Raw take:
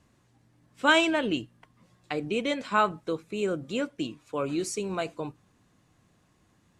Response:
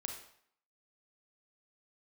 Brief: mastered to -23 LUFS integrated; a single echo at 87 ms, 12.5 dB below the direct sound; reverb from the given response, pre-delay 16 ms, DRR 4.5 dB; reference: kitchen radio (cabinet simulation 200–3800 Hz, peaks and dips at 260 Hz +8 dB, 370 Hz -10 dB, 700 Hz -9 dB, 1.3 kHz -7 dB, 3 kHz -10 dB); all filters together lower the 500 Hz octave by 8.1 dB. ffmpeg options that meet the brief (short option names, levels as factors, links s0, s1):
-filter_complex "[0:a]equalizer=f=500:t=o:g=-4,aecho=1:1:87:0.237,asplit=2[s0][s1];[1:a]atrim=start_sample=2205,adelay=16[s2];[s1][s2]afir=irnorm=-1:irlink=0,volume=0.668[s3];[s0][s3]amix=inputs=2:normalize=0,highpass=200,equalizer=f=260:t=q:w=4:g=8,equalizer=f=370:t=q:w=4:g=-10,equalizer=f=700:t=q:w=4:g=-9,equalizer=f=1300:t=q:w=4:g=-7,equalizer=f=3000:t=q:w=4:g=-10,lowpass=f=3800:w=0.5412,lowpass=f=3800:w=1.3066,volume=2.66"